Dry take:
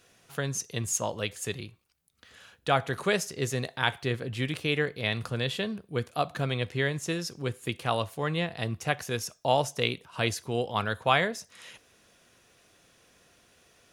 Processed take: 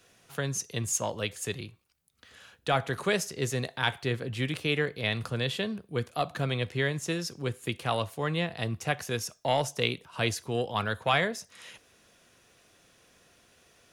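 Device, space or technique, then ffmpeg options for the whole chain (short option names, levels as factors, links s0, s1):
one-band saturation: -filter_complex "[0:a]acrossover=split=200|2000[s0][s1][s2];[s1]asoftclip=type=tanh:threshold=0.126[s3];[s0][s3][s2]amix=inputs=3:normalize=0"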